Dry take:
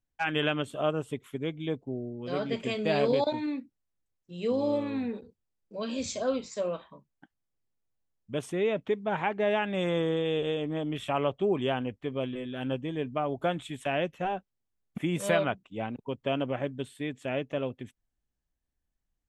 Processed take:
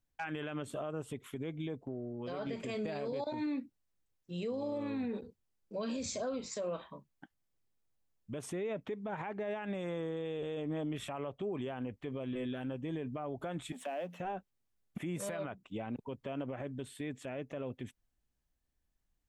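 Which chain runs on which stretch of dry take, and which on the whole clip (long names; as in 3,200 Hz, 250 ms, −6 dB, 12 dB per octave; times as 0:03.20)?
0:01.81–0:02.47: parametric band 870 Hz +6 dB 1.4 octaves + downward compressor 3 to 1, threshold −40 dBFS
0:13.72–0:14.20: mu-law and A-law mismatch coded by mu + downward compressor 2 to 1, threshold −39 dBFS + Chebyshev high-pass with heavy ripple 170 Hz, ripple 9 dB
whole clip: dynamic equaliser 3,100 Hz, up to −7 dB, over −52 dBFS, Q 2.4; downward compressor, threshold −31 dBFS; brickwall limiter −31.5 dBFS; level +1.5 dB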